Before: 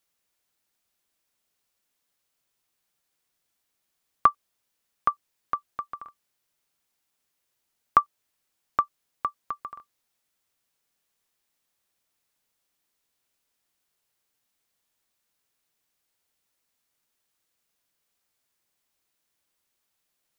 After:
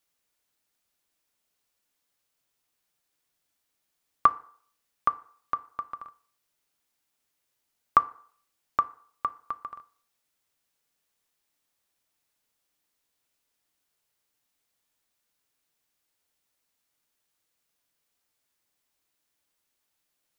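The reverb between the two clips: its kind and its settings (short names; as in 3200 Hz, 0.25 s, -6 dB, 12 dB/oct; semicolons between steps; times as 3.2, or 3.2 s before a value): FDN reverb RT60 0.55 s, low-frequency decay 0.75×, high-frequency decay 0.65×, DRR 12.5 dB; gain -1 dB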